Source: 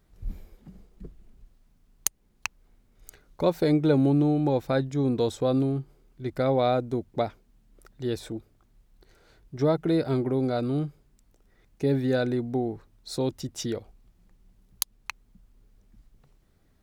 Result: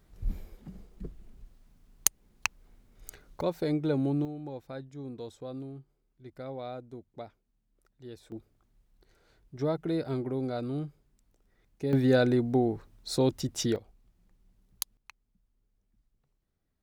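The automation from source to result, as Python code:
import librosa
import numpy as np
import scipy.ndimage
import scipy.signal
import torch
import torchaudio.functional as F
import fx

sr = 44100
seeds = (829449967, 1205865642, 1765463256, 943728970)

y = fx.gain(x, sr, db=fx.steps((0.0, 2.0), (3.41, -7.0), (4.25, -16.0), (8.32, -6.5), (11.93, 2.0), (13.76, -6.0), (14.97, -16.0)))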